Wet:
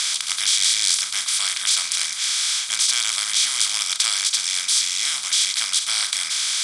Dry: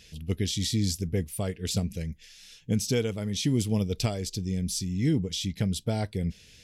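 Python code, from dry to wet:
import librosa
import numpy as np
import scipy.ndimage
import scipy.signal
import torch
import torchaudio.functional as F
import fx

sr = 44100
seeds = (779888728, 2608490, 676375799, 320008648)

y = fx.bin_compress(x, sr, power=0.2)
y = scipy.signal.sosfilt(scipy.signal.ellip(3, 1.0, 40, [1100.0, 9600.0], 'bandpass', fs=sr, output='sos'), y)
y = fx.tilt_eq(y, sr, slope=1.5)
y = fx.end_taper(y, sr, db_per_s=260.0)
y = F.gain(torch.from_numpy(y), 4.5).numpy()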